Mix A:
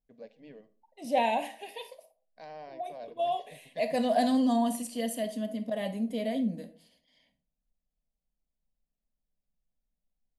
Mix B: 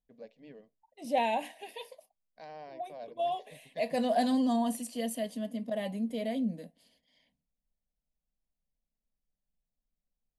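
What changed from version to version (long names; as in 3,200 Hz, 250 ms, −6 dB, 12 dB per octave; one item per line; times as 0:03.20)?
reverb: off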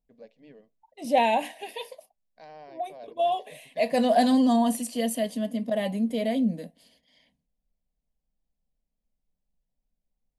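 second voice +7.0 dB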